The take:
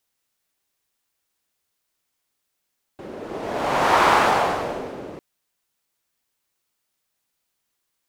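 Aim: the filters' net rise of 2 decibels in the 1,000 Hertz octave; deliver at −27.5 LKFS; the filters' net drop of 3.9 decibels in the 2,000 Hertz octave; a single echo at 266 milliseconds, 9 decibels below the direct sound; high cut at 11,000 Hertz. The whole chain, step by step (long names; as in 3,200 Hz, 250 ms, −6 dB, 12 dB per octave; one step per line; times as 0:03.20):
low-pass filter 11,000 Hz
parametric band 1,000 Hz +4 dB
parametric band 2,000 Hz −7 dB
single-tap delay 266 ms −9 dB
level −9 dB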